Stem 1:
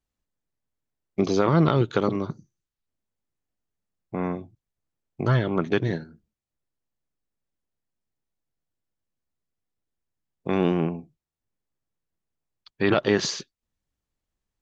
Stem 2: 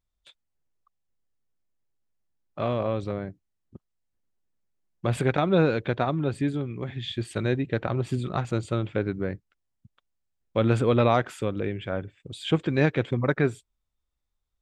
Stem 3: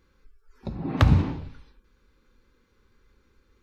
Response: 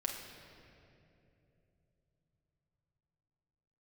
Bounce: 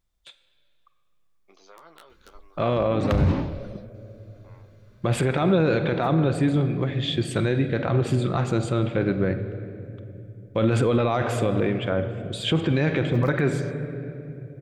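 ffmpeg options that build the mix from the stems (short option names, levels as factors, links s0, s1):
-filter_complex "[0:a]highpass=760,aeval=exprs='(mod(5.01*val(0)+1,2)-1)/5.01':c=same,flanger=delay=8.8:depth=4.1:regen=-36:speed=0.22:shape=sinusoidal,adelay=300,volume=0.126[s0];[1:a]volume=1.33,asplit=3[s1][s2][s3];[s2]volume=0.596[s4];[2:a]acontrast=70,adelay=2100,volume=0.75[s5];[s3]apad=whole_len=252543[s6];[s5][s6]sidechaincompress=threshold=0.0562:ratio=8:attack=5.6:release=143[s7];[3:a]atrim=start_sample=2205[s8];[s4][s8]afir=irnorm=-1:irlink=0[s9];[s0][s1][s7][s9]amix=inputs=4:normalize=0,alimiter=limit=0.251:level=0:latency=1:release=22"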